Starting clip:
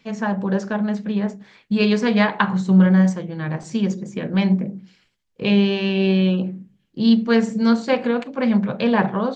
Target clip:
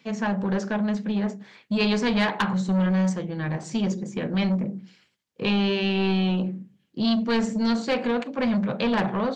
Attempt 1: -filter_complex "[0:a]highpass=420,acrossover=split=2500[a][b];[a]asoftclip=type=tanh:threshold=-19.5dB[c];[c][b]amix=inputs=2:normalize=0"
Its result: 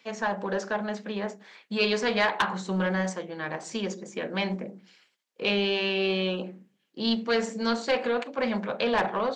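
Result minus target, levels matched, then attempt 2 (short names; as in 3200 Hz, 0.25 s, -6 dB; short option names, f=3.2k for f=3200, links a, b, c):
125 Hz band -6.5 dB
-filter_complex "[0:a]highpass=120,acrossover=split=2500[a][b];[a]asoftclip=type=tanh:threshold=-19.5dB[c];[c][b]amix=inputs=2:normalize=0"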